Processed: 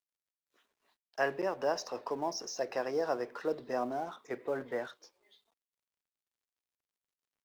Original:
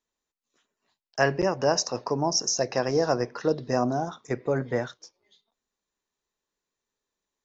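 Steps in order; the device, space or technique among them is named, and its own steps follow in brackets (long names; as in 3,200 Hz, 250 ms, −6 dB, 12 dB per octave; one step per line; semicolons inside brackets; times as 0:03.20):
phone line with mismatched companding (band-pass filter 320–3,600 Hz; mu-law and A-law mismatch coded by mu)
level −8 dB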